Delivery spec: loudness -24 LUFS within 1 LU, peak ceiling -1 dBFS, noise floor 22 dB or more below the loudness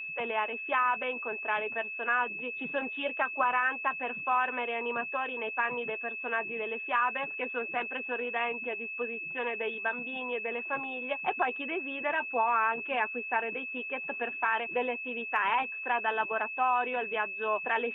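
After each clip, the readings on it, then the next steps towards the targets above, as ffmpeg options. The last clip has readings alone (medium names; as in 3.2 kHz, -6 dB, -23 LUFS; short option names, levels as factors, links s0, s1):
steady tone 2.6 kHz; tone level -36 dBFS; loudness -31.0 LUFS; peak level -14.5 dBFS; loudness target -24.0 LUFS
-> -af "bandreject=f=2600:w=30"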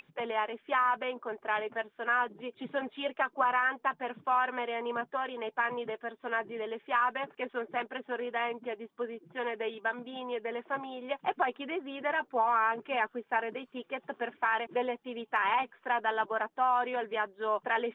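steady tone not found; loudness -32.5 LUFS; peak level -15.5 dBFS; loudness target -24.0 LUFS
-> -af "volume=2.66"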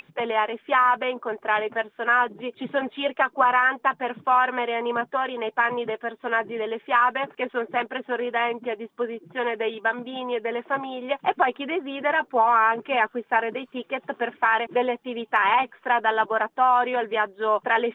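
loudness -24.0 LUFS; peak level -7.0 dBFS; noise floor -62 dBFS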